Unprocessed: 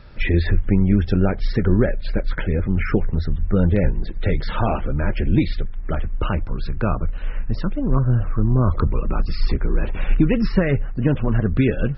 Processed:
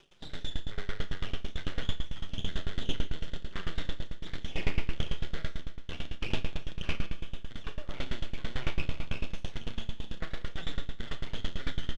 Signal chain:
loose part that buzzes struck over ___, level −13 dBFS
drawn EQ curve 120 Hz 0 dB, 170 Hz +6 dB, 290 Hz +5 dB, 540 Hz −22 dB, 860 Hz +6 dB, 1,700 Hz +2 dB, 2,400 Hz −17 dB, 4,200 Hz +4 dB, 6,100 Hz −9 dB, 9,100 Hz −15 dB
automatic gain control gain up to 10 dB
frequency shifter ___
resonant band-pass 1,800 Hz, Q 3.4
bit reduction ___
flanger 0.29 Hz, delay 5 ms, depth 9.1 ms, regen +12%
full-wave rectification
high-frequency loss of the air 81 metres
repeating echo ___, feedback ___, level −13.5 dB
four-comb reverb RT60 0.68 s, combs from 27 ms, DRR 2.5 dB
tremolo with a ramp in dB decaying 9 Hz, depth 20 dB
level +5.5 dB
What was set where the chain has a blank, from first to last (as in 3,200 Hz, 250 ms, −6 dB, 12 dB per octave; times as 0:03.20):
−19 dBFS, +14 Hz, 9 bits, 156 ms, 57%